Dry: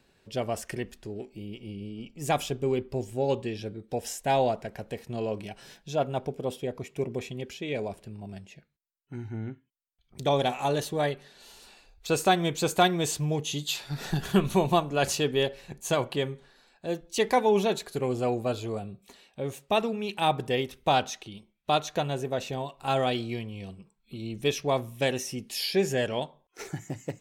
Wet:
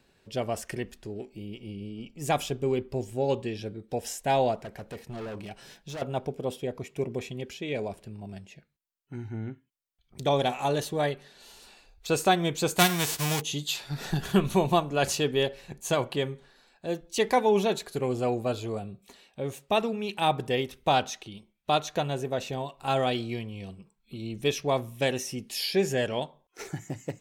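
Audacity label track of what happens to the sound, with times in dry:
4.630000	6.020000	gain into a clipping stage and back gain 34.5 dB
12.780000	13.400000	spectral envelope flattened exponent 0.3

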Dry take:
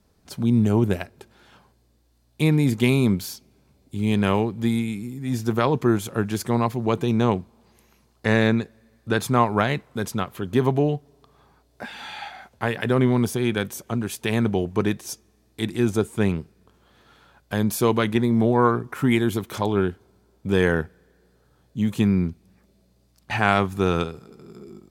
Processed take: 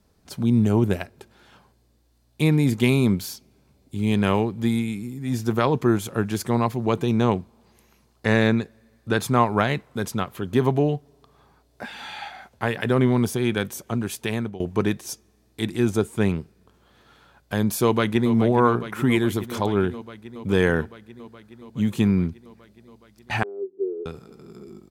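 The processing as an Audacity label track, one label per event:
14.180000	14.600000	fade out, to −19 dB
17.830000	18.330000	delay throw 420 ms, feedback 80%, level −11.5 dB
23.430000	24.060000	flat-topped band-pass 390 Hz, Q 5.5

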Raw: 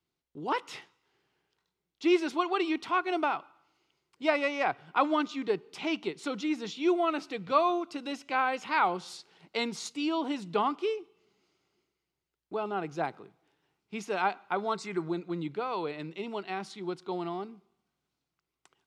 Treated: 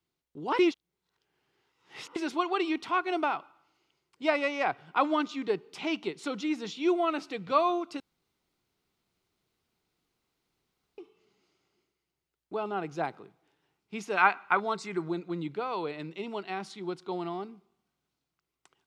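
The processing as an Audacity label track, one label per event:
0.590000	2.160000	reverse
8.000000	10.980000	fill with room tone
14.170000	14.600000	flat-topped bell 1,600 Hz +9.5 dB

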